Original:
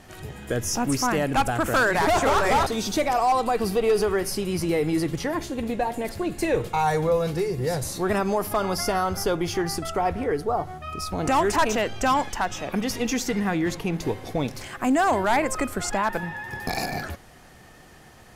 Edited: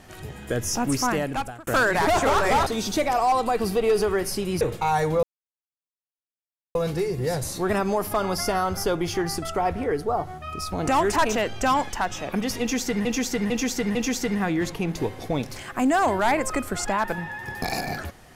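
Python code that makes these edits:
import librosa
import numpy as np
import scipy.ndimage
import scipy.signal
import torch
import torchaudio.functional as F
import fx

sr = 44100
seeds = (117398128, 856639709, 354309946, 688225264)

y = fx.edit(x, sr, fx.fade_out_span(start_s=1.09, length_s=0.58),
    fx.cut(start_s=4.61, length_s=1.92),
    fx.insert_silence(at_s=7.15, length_s=1.52),
    fx.repeat(start_s=13.0, length_s=0.45, count=4), tone=tone)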